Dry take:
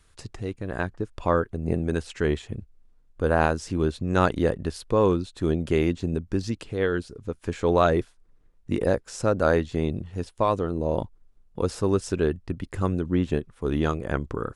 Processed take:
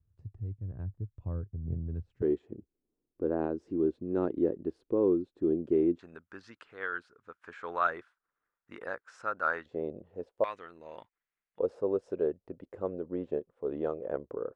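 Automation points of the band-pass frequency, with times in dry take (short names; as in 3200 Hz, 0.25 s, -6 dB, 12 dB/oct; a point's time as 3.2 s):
band-pass, Q 3.1
100 Hz
from 2.22 s 340 Hz
from 5.99 s 1400 Hz
from 9.66 s 530 Hz
from 10.44 s 2000 Hz
from 11.59 s 520 Hz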